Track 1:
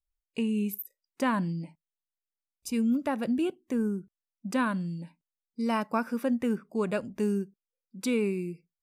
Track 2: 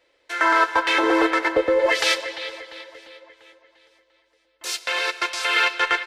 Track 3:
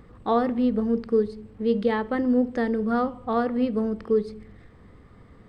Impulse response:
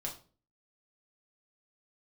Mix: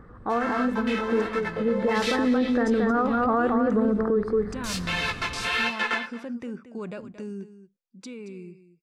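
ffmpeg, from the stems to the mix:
-filter_complex "[0:a]lowpass=f=7.5k:w=0.5412,lowpass=f=7.5k:w=1.3066,alimiter=level_in=2.5dB:limit=-24dB:level=0:latency=1:release=47,volume=-2.5dB,volume=-10dB,asplit=2[a][b];[b]volume=-13dB[c];[1:a]aecho=1:1:4.6:0.54,flanger=delay=15.5:depth=7.5:speed=1.4,volume=-11.5dB,asplit=2[d][e];[e]volume=-21dB[f];[2:a]highshelf=f=2.1k:t=q:w=3:g=-10.5,acompressor=threshold=-35dB:ratio=1.5,asoftclip=type=hard:threshold=-17.5dB,volume=1dB,asplit=2[g][h];[h]volume=-5.5dB[i];[c][f][i]amix=inputs=3:normalize=0,aecho=0:1:226:1[j];[a][d][g][j]amix=inputs=4:normalize=0,dynaudnorm=f=630:g=7:m=9dB,alimiter=limit=-15dB:level=0:latency=1:release=31"

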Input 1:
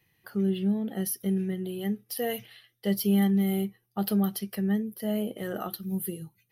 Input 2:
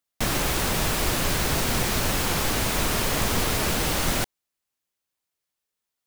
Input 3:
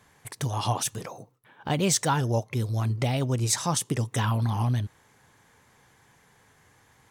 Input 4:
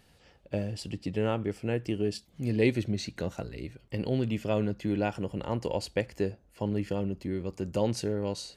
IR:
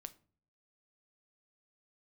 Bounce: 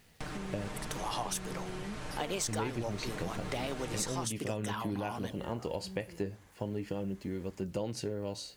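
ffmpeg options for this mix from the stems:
-filter_complex "[0:a]alimiter=level_in=4dB:limit=-24dB:level=0:latency=1,volume=-4dB,volume=0.5dB[a];[1:a]acrossover=split=2700[b][c];[c]acompressor=threshold=-34dB:ratio=4:attack=1:release=60[d];[b][d]amix=inputs=2:normalize=0,aecho=1:1:6.6:0.65,volume=-10.5dB[e];[2:a]highpass=330,adelay=500,volume=-4dB[f];[3:a]flanger=delay=4:depth=9.4:regen=67:speed=0.27:shape=triangular,acrusher=bits=10:mix=0:aa=0.000001,volume=-1dB,asplit=3[g][h][i];[g]atrim=end=0.68,asetpts=PTS-STARTPTS,afade=t=out:st=0.676:d=0.004:c=hsin[j];[h]atrim=start=0.68:end=2.48,asetpts=PTS-STARTPTS,volume=0[k];[i]atrim=start=2.48,asetpts=PTS-STARTPTS,afade=t=in:d=0.004:c=hsin[l];[j][k][l]concat=n=3:v=0:a=1,asplit=3[m][n][o];[n]volume=-4dB[p];[o]apad=whole_len=287453[q];[a][q]sidechaincompress=threshold=-43dB:ratio=8:attack=16:release=1040[r];[r][e]amix=inputs=2:normalize=0,lowpass=f=9.8k:w=0.5412,lowpass=f=9.8k:w=1.3066,acompressor=threshold=-37dB:ratio=6,volume=0dB[s];[4:a]atrim=start_sample=2205[t];[p][t]afir=irnorm=-1:irlink=0[u];[f][m][s][u]amix=inputs=4:normalize=0,acompressor=threshold=-31dB:ratio=6"

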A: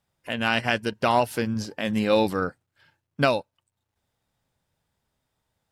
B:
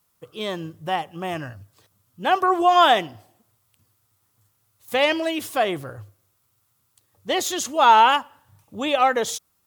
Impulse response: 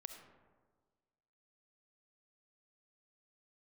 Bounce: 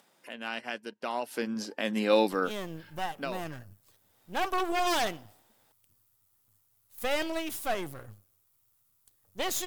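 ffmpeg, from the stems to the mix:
-filter_complex "[0:a]acompressor=mode=upward:threshold=-31dB:ratio=2.5,highpass=f=220:w=0.5412,highpass=f=220:w=1.3066,volume=-2.5dB,afade=t=in:st=1.2:d=0.33:silence=0.316228,afade=t=out:st=2.67:d=0.59:silence=0.237137[a];[1:a]aeval=exprs='if(lt(val(0),0),0.251*val(0),val(0))':c=same,highshelf=f=8.5k:g=10.5,aeval=exprs='0.2*(abs(mod(val(0)/0.2+3,4)-2)-1)':c=same,adelay=2100,volume=-6dB[b];[a][b]amix=inputs=2:normalize=0"

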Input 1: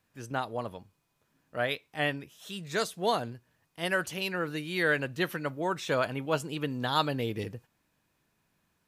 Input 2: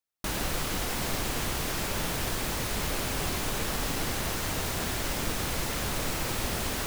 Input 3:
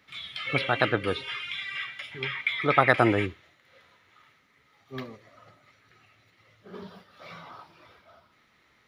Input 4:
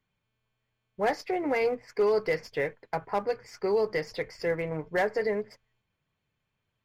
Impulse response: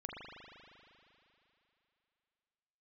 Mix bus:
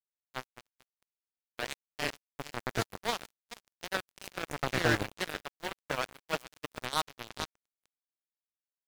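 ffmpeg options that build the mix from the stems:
-filter_complex "[0:a]volume=-3.5dB,asplit=2[a][b];[b]volume=-5.5dB[c];[1:a]highpass=160,volume=-17.5dB,asplit=2[d][e];[e]volume=-6.5dB[f];[2:a]aemphasis=mode=reproduction:type=riaa,adelay=1850,volume=-14.5dB[g];[3:a]acompressor=threshold=-27dB:ratio=6,alimiter=level_in=5.5dB:limit=-24dB:level=0:latency=1:release=373,volume=-5.5dB,volume=-3.5dB,asplit=2[h][i];[i]volume=-16.5dB[j];[c][f][j]amix=inputs=3:normalize=0,aecho=0:1:436|872|1308|1744:1|0.28|0.0784|0.022[k];[a][d][g][h][k]amix=inputs=5:normalize=0,acrusher=bits=3:mix=0:aa=0.5"

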